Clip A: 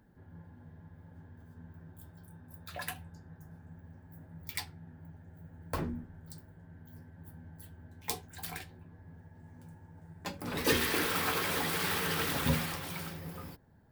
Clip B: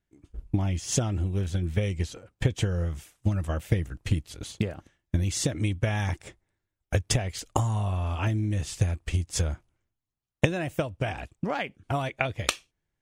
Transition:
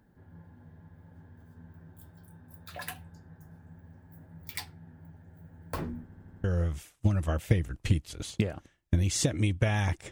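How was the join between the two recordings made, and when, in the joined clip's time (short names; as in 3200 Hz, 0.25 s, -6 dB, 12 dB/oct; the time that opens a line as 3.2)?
clip A
6.04 stutter in place 0.08 s, 5 plays
6.44 switch to clip B from 2.65 s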